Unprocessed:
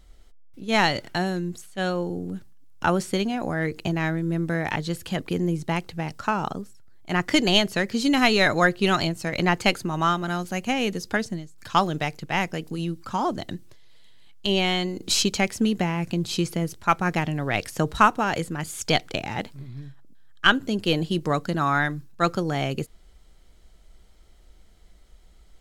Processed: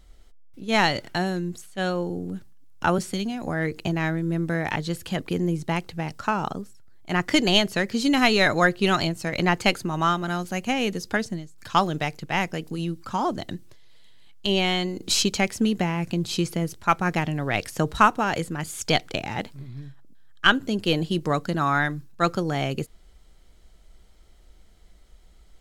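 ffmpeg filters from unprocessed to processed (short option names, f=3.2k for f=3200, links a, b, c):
-filter_complex "[0:a]asettb=1/sr,asplit=3[a][b][c];[a]atrim=end=2.984[d];[b]atrim=start=2.98:end=3.47,asetpts=PTS-STARTPTS,afade=t=in:d=0.004:c=qsin,afade=t=out:st=0.486:d=0.004:c=qsin,acrossover=split=250|3000[e][f][g];[f]acompressor=threshold=-33dB:ratio=6:attack=3.2:release=140:knee=2.83:detection=peak[h];[e][h][g]amix=inputs=3:normalize=0[i];[c]atrim=start=3.466[j];[d][i]acrossfade=d=0.004:c1=hsin:c2=qsin[k];[k][j]acrossfade=d=0.004:c1=qsin:c2=hsin"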